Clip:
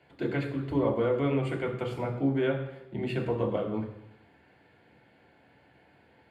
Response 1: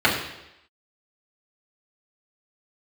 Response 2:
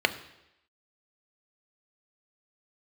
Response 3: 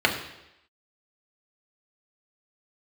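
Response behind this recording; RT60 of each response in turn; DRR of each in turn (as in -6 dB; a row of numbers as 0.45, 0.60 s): 3; 0.85, 0.85, 0.85 s; -7.0, 8.5, 0.0 dB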